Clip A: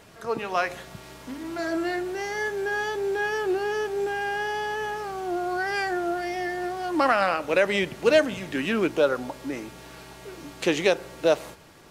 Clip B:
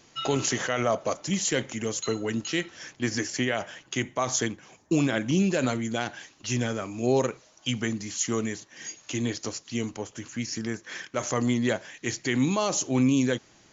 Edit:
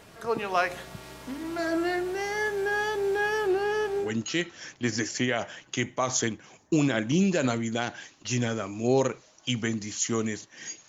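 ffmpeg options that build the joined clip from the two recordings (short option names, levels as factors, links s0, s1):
-filter_complex "[0:a]asettb=1/sr,asplit=3[s0][s1][s2];[s0]atrim=end=3.474[s3];[s1]atrim=start=3.47:end=4.13,asetpts=PTS-STARTPTS,afade=t=in:d=0.004:c=qsin,afade=t=out:st=0.656:d=0.004:c=qsin,highshelf=f=8100:g=-6[s4];[s2]atrim=start=4.126[s5];[s3][s4]acrossfade=d=0.004:c1=hsin:c2=qsin[s6];[s6][s5]acrossfade=d=0.004:c1=qsin:c2=hsin,apad=whole_dur=10.88,atrim=end=10.88,atrim=end=4.13,asetpts=PTS-STARTPTS[s7];[1:a]atrim=start=2.16:end=9.07,asetpts=PTS-STARTPTS[s8];[s7][s8]acrossfade=d=0.16:c1=tri:c2=tri"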